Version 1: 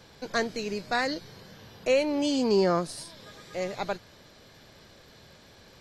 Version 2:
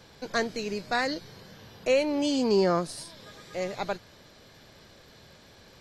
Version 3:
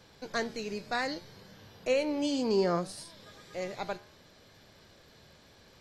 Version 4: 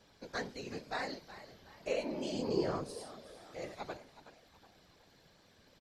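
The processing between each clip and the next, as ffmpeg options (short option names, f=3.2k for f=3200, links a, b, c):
-af anull
-af "flanger=delay=9.9:depth=4.1:regen=84:speed=0.65:shape=sinusoidal"
-filter_complex "[0:a]asplit=5[a][b][c][d][e];[b]adelay=371,afreqshift=67,volume=-14.5dB[f];[c]adelay=742,afreqshift=134,volume=-22dB[g];[d]adelay=1113,afreqshift=201,volume=-29.6dB[h];[e]adelay=1484,afreqshift=268,volume=-37.1dB[i];[a][f][g][h][i]amix=inputs=5:normalize=0,afftfilt=real='hypot(re,im)*cos(2*PI*random(0))':imag='hypot(re,im)*sin(2*PI*random(1))':win_size=512:overlap=0.75,volume=-1dB"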